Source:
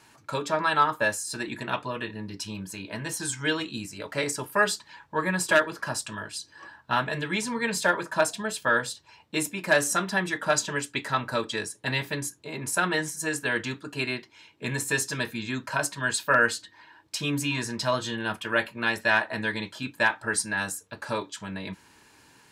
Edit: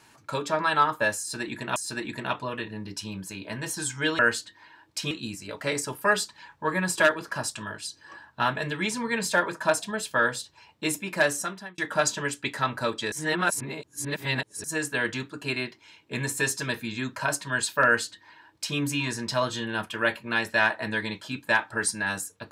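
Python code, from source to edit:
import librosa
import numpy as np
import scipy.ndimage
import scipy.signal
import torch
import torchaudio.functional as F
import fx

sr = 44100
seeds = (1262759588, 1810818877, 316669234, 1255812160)

y = fx.edit(x, sr, fx.repeat(start_s=1.19, length_s=0.57, count=2),
    fx.fade_out_span(start_s=9.65, length_s=0.64),
    fx.reverse_span(start_s=11.63, length_s=1.52),
    fx.duplicate(start_s=16.36, length_s=0.92, to_s=3.62), tone=tone)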